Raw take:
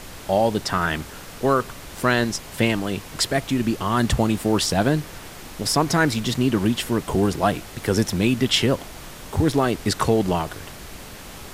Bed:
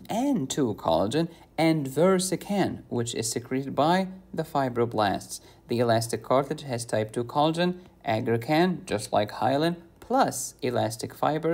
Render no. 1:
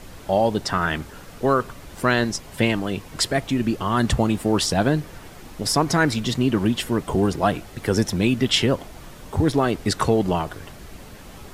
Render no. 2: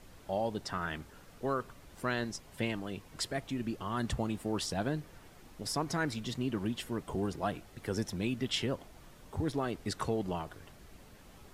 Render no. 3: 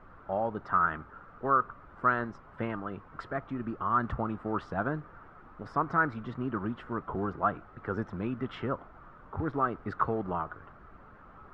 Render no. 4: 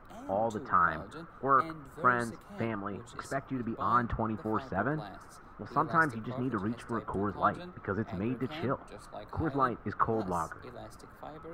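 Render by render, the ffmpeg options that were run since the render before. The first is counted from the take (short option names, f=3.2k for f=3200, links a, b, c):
-af "afftdn=nr=7:nf=-39"
-af "volume=-14dB"
-af "acrusher=bits=6:mode=log:mix=0:aa=0.000001,lowpass=f=1.3k:t=q:w=5.6"
-filter_complex "[1:a]volume=-21dB[a];[0:a][a]amix=inputs=2:normalize=0"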